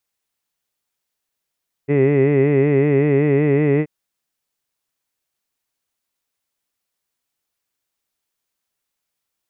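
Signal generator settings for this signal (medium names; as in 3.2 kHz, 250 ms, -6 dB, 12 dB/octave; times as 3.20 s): formant-synthesis vowel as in hid, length 1.98 s, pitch 138 Hz, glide +1 st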